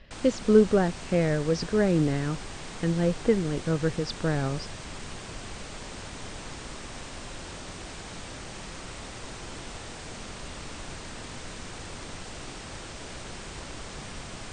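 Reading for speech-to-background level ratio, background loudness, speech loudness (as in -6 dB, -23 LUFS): 14.0 dB, -40.0 LUFS, -26.0 LUFS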